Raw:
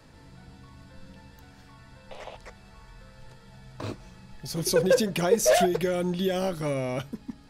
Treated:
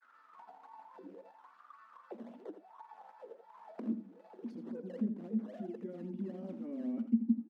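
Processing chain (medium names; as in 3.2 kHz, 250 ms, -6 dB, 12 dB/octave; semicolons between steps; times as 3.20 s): gate -47 dBFS, range -11 dB; reverse; compression 10:1, threshold -32 dBFS, peak gain reduction 17 dB; reverse; granulator 100 ms, grains 20 per s, spray 10 ms, pitch spread up and down by 0 st; decimation with a swept rate 11×, swing 160% 3.7 Hz; auto-wah 230–1500 Hz, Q 15, down, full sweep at -39.5 dBFS; brick-wall FIR high-pass 180 Hz; on a send: delay 81 ms -10.5 dB; on the sum: tape noise reduction on one side only encoder only; trim +16.5 dB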